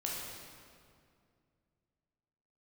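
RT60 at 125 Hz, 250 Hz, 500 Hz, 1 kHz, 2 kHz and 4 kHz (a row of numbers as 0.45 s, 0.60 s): 3.1 s, 2.9 s, 2.4 s, 2.2 s, 1.9 s, 1.6 s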